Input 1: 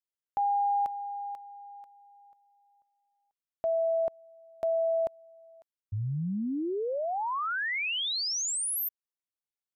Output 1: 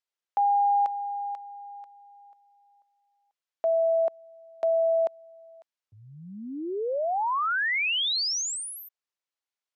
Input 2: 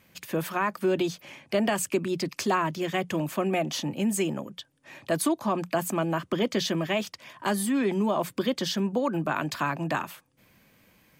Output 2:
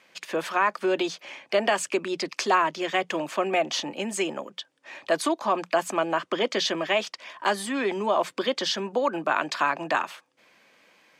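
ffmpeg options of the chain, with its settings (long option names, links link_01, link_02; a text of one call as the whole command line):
ffmpeg -i in.wav -af "highpass=450,lowpass=6200,volume=5dB" out.wav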